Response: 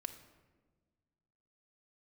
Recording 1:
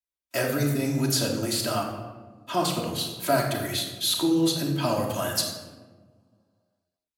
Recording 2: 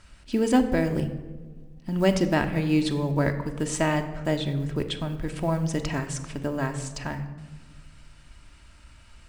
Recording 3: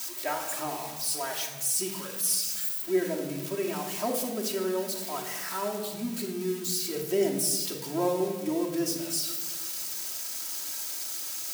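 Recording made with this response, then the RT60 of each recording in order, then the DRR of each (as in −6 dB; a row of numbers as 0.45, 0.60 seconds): 2; 1.4, 1.4, 1.4 seconds; −7.5, 5.5, −2.0 decibels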